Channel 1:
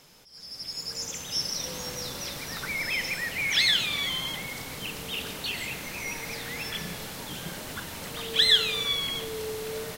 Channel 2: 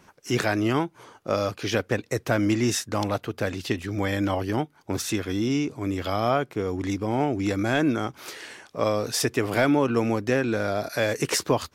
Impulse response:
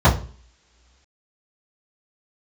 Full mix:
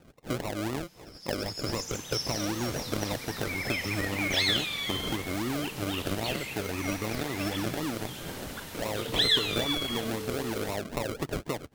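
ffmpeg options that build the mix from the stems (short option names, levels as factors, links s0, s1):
-filter_complex "[0:a]adelay=800,volume=0.631[s0];[1:a]acompressor=threshold=0.0398:ratio=12,acrusher=samples=39:mix=1:aa=0.000001:lfo=1:lforange=23.4:lforate=3.8,volume=0.944[s1];[s0][s1]amix=inputs=2:normalize=0"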